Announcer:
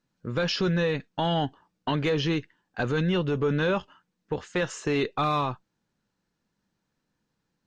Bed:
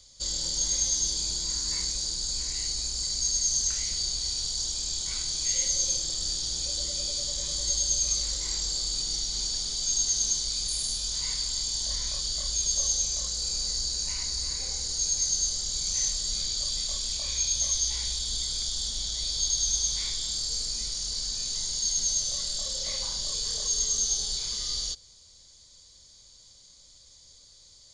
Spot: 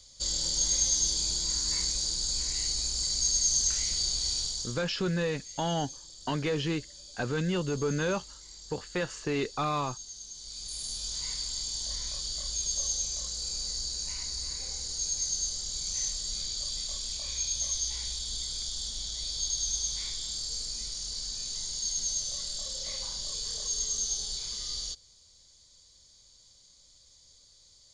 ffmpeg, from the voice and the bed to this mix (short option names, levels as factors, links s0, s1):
-filter_complex "[0:a]adelay=4400,volume=0.596[s0];[1:a]volume=4.73,afade=t=out:st=4.36:d=0.48:silence=0.125893,afade=t=in:st=10.33:d=0.73:silence=0.211349[s1];[s0][s1]amix=inputs=2:normalize=0"